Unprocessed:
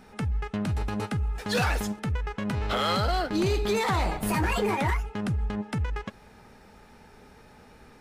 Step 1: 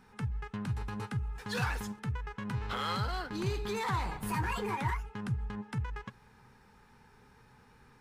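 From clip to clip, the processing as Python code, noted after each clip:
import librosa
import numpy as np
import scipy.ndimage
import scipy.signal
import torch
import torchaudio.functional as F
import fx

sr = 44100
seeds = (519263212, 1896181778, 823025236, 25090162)

y = fx.graphic_eq_31(x, sr, hz=(125, 315, 630, 1000, 1600), db=(10, -4, -11, 7, 4))
y = y * 10.0 ** (-9.0 / 20.0)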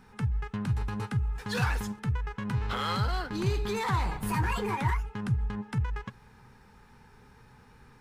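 y = fx.low_shelf(x, sr, hz=140.0, db=4.5)
y = y * 10.0 ** (3.0 / 20.0)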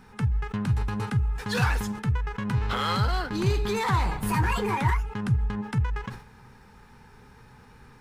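y = fx.sustainer(x, sr, db_per_s=120.0)
y = y * 10.0 ** (4.0 / 20.0)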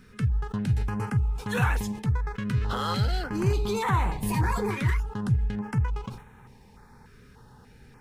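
y = fx.filter_held_notch(x, sr, hz=3.4, low_hz=850.0, high_hz=4800.0)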